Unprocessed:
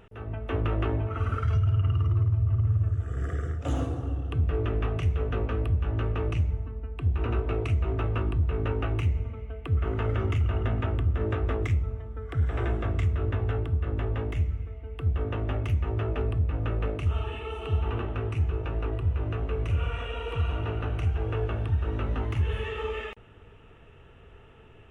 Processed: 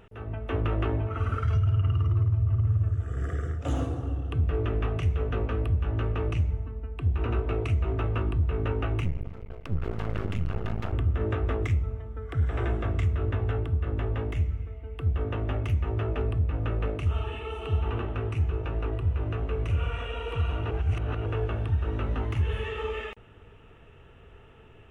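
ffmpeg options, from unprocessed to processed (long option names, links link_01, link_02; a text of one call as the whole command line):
ffmpeg -i in.wav -filter_complex "[0:a]asettb=1/sr,asplit=3[link_01][link_02][link_03];[link_01]atrim=end=9.044[link_04];[link_02]atrim=start=9.04:end=10.93,asetpts=PTS-STARTPTS,afade=type=in:duration=0.004:curve=qsin,afade=type=out:start_time=1.886:duration=0.004:curve=qsin,aeval=exprs='max(val(0),0)':channel_layout=same[link_05];[link_03]atrim=start=10.926[link_06];[link_04][link_05]acrossfade=duration=0.004:curve1=hsin:curve2=qsin[link_07];[link_07][link_06]acrossfade=duration=0.004:curve1=qsin:curve2=hsin,asplit=3[link_08][link_09][link_10];[link_08]atrim=end=20.712[link_11];[link_09]atrim=start=20.708:end=21.262,asetpts=PTS-STARTPTS,areverse[link_12];[link_10]atrim=start=21.258[link_13];[link_11][link_12]acrossfade=duration=0.004:curve1=hsin:curve2=hsin[link_14];[link_14][link_13]acrossfade=duration=0.004:curve1=hsin:curve2=hsin" out.wav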